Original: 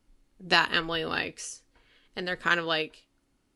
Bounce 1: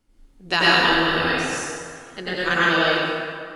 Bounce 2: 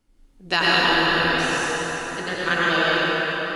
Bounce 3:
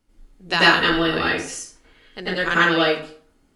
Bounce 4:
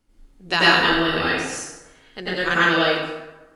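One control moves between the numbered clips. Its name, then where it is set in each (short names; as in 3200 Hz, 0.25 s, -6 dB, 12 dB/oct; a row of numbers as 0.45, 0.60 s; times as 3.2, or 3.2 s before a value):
plate-style reverb, RT60: 2.2, 5.3, 0.5, 1.1 s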